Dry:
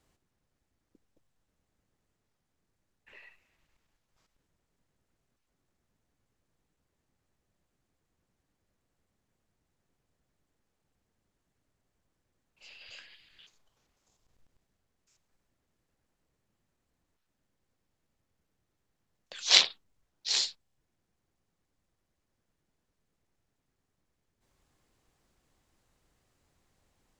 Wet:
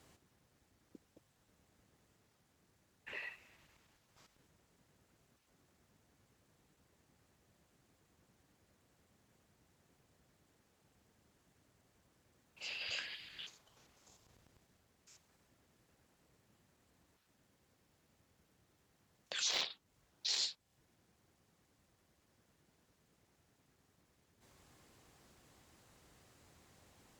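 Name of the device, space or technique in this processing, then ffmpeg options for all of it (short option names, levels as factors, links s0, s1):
podcast mastering chain: -af "highpass=66,deesser=0.55,acompressor=threshold=0.00631:ratio=2.5,alimiter=level_in=2.82:limit=0.0631:level=0:latency=1:release=92,volume=0.355,volume=2.82" -ar 44100 -c:a libmp3lame -b:a 96k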